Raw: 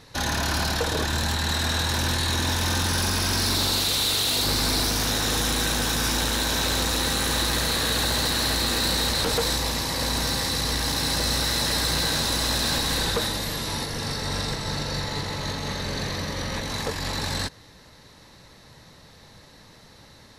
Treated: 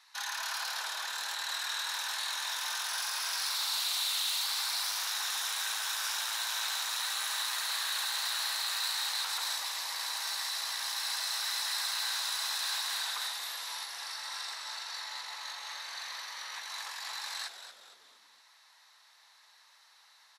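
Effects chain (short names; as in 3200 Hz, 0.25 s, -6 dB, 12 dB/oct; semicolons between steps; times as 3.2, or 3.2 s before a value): steep high-pass 880 Hz 36 dB/oct; frequency-shifting echo 0.231 s, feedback 41%, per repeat -150 Hz, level -10 dB; gain -8.5 dB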